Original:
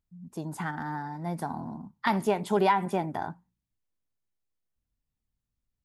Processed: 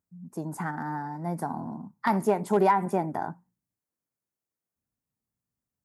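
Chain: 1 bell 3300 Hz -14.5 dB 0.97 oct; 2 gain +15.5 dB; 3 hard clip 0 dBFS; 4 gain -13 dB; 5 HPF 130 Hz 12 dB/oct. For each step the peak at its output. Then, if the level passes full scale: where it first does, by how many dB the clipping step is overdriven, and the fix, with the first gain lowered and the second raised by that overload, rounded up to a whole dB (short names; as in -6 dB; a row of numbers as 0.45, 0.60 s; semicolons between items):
-12.5, +3.0, 0.0, -13.0, -10.0 dBFS; step 2, 3.0 dB; step 2 +12.5 dB, step 4 -10 dB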